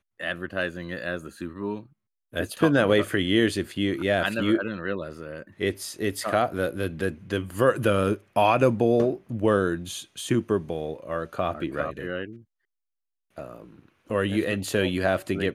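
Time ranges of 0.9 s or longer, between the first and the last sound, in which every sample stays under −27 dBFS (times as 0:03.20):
0:12.25–0:13.38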